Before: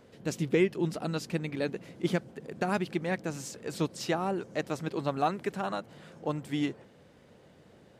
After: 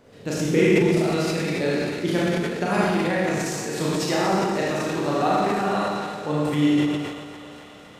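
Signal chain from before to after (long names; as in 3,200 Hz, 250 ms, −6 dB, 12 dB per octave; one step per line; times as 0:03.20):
feedback echo with a high-pass in the loop 268 ms, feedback 82%, high-pass 380 Hz, level −13.5 dB
four-comb reverb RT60 1.5 s, combs from 27 ms, DRR −6.5 dB
transient designer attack +1 dB, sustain +8 dB
level +1.5 dB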